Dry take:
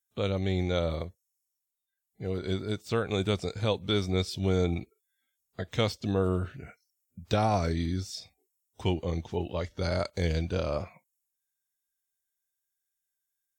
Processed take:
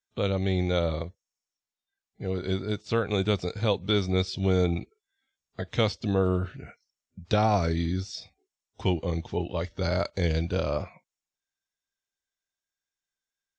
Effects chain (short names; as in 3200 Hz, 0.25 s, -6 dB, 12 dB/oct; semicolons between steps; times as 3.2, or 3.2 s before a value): LPF 6200 Hz 24 dB/oct; gain +2.5 dB